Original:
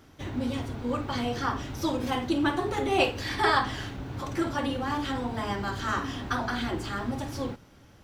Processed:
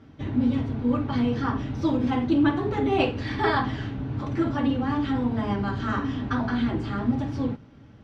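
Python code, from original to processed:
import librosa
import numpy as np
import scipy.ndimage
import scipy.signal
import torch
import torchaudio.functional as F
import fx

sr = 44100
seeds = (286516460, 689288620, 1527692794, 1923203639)

y = scipy.signal.sosfilt(scipy.signal.butter(2, 3600.0, 'lowpass', fs=sr, output='sos'), x)
y = fx.peak_eq(y, sr, hz=180.0, db=11.0, octaves=1.8)
y = fx.notch_comb(y, sr, f0_hz=180.0)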